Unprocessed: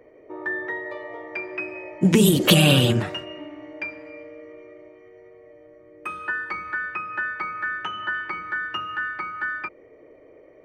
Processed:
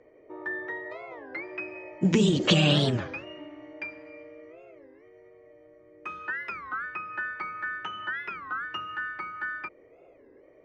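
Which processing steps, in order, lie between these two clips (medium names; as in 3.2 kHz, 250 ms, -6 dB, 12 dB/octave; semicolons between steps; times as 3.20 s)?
steep low-pass 7.4 kHz 72 dB/octave; warped record 33 1/3 rpm, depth 250 cents; trim -5.5 dB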